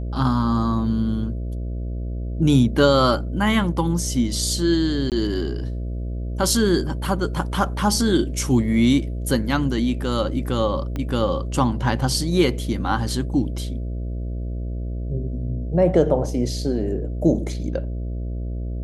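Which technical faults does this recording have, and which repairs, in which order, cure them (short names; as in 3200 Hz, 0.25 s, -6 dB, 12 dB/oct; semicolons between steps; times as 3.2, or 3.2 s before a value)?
buzz 60 Hz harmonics 11 -27 dBFS
5.1–5.12 gap 18 ms
10.96 pop -16 dBFS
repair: de-click; de-hum 60 Hz, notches 11; interpolate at 5.1, 18 ms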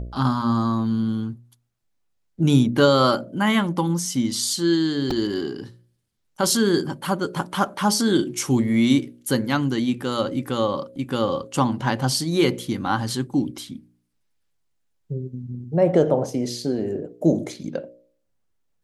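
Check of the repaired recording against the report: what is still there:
10.96 pop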